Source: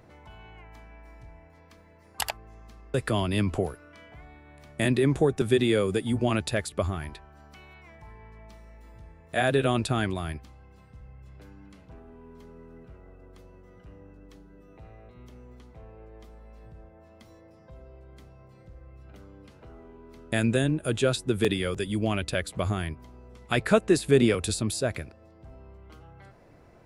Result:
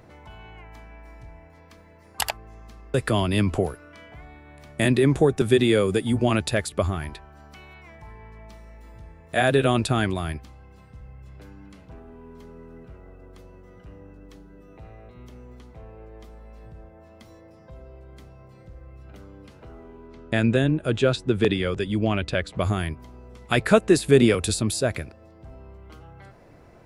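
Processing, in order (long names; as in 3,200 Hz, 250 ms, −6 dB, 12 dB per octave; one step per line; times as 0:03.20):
0:20.07–0:22.61: high-frequency loss of the air 99 metres
level +4 dB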